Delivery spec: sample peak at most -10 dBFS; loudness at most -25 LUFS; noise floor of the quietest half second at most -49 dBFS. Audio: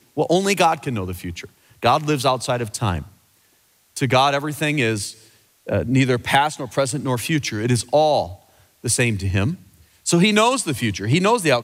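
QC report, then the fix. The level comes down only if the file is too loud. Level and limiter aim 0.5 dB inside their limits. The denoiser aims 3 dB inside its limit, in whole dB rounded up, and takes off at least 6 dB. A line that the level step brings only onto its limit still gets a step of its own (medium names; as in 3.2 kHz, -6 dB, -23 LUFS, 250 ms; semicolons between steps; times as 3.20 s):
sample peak -4.5 dBFS: fail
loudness -20.0 LUFS: fail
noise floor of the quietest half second -59 dBFS: pass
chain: trim -5.5 dB; peak limiter -10.5 dBFS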